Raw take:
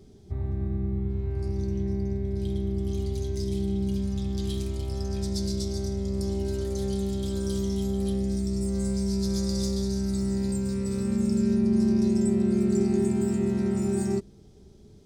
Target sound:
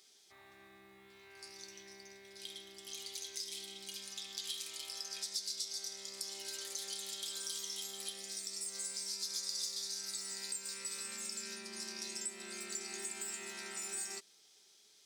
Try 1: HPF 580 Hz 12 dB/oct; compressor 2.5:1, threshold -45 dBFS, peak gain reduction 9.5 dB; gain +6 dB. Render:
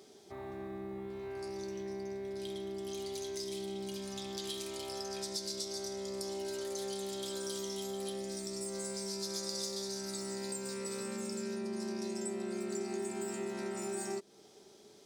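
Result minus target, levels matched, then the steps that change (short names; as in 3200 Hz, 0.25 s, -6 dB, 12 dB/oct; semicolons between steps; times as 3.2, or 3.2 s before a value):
500 Hz band +16.0 dB
change: HPF 2100 Hz 12 dB/oct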